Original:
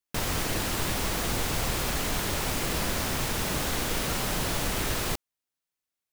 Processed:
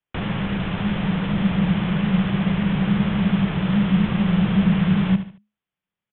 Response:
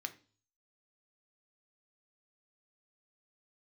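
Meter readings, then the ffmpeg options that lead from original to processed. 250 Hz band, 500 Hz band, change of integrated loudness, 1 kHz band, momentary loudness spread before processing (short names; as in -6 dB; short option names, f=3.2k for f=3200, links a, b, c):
+17.0 dB, +1.0 dB, +7.5 dB, +1.5 dB, 1 LU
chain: -filter_complex "[0:a]equalizer=f=460:t=o:w=0.77:g=3,aresample=8000,aresample=44100,asubboost=boost=4:cutoff=72,asplit=2[a][b];[b]aecho=0:1:74|148|222:0.237|0.0735|0.0228[c];[a][c]amix=inputs=2:normalize=0,acrossover=split=180[d][e];[e]acompressor=threshold=-31dB:ratio=6[f];[d][f]amix=inputs=2:normalize=0,afreqshift=-210,volume=4.5dB"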